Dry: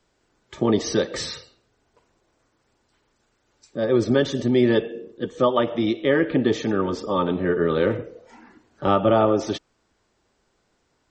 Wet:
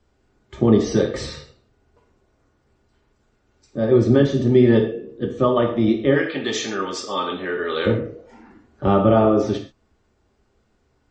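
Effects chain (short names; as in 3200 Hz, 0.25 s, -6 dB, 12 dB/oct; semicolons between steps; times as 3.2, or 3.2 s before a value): tilt -2 dB/oct, from 6.15 s +4 dB/oct, from 7.85 s -2 dB/oct; non-linear reverb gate 0.16 s falling, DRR 1.5 dB; gain -1.5 dB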